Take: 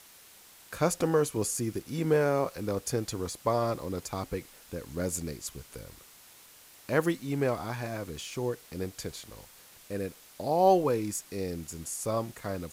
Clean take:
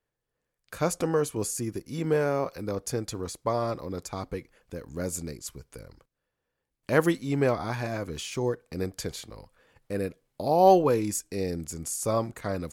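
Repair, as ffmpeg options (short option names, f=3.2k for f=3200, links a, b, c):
-af "afwtdn=0.0022,asetnsamples=n=441:p=0,asendcmd='6.86 volume volume 4dB',volume=0dB"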